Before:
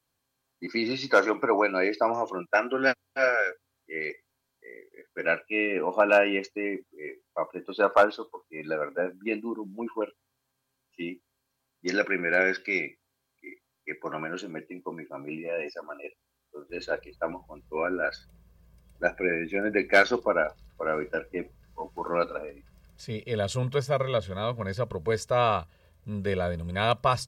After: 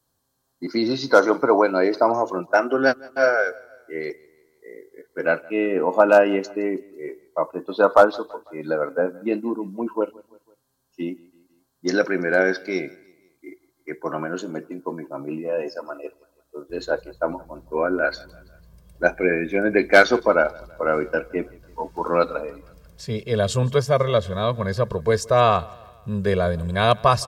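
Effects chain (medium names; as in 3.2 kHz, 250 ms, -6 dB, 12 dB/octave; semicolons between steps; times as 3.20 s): peaking EQ 2.4 kHz -15 dB 0.78 oct, from 17.99 s -5 dB; feedback delay 166 ms, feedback 52%, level -24 dB; trim +7.5 dB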